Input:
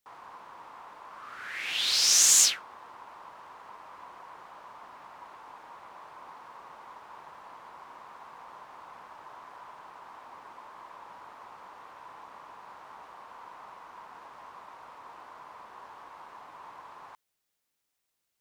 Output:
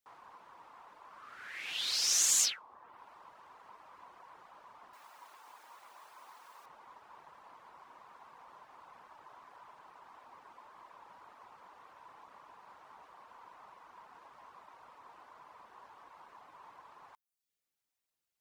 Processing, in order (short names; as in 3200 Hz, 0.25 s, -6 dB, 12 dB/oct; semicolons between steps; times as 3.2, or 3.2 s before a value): reverb removal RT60 0.57 s; 4.93–6.66 RIAA curve recording; gain -6.5 dB